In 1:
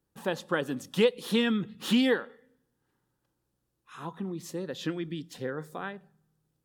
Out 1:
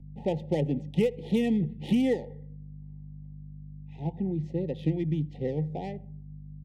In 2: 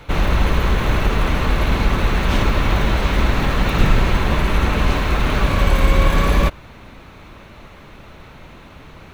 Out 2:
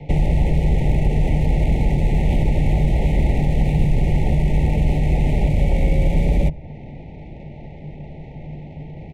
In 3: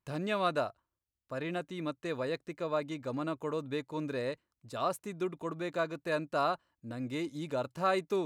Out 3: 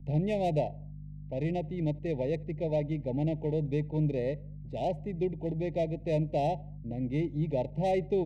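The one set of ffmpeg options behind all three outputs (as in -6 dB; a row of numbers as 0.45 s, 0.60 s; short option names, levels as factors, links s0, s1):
-filter_complex "[0:a]highshelf=f=2800:g=-10,adynamicsmooth=sensitivity=7:basefreq=1900,asplit=2[s0][s1];[s1]adelay=78,lowpass=f=1700:p=1,volume=0.0631,asplit=2[s2][s3];[s3]adelay=78,lowpass=f=1700:p=1,volume=0.48,asplit=2[s4][s5];[s5]adelay=78,lowpass=f=1700:p=1,volume=0.48[s6];[s2][s4][s6]amix=inputs=3:normalize=0[s7];[s0][s7]amix=inputs=2:normalize=0,aeval=exprs='val(0)+0.00316*(sin(2*PI*50*n/s)+sin(2*PI*2*50*n/s)/2+sin(2*PI*3*50*n/s)/3+sin(2*PI*4*50*n/s)/4+sin(2*PI*5*50*n/s)/5)':c=same,asuperstop=centerf=1300:order=20:qfactor=1.3,equalizer=f=150:t=o:w=0.23:g=13,asplit=2[s8][s9];[s9]asoftclip=type=tanh:threshold=0.316,volume=0.531[s10];[s8][s10]amix=inputs=2:normalize=0,acrossover=split=110|2800|6700[s11][s12][s13][s14];[s11]acompressor=threshold=0.2:ratio=4[s15];[s12]acompressor=threshold=0.0794:ratio=4[s16];[s13]acompressor=threshold=0.00224:ratio=4[s17];[s14]acompressor=threshold=0.00282:ratio=4[s18];[s15][s16][s17][s18]amix=inputs=4:normalize=0"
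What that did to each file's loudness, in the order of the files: +1.0 LU, -1.0 LU, +3.5 LU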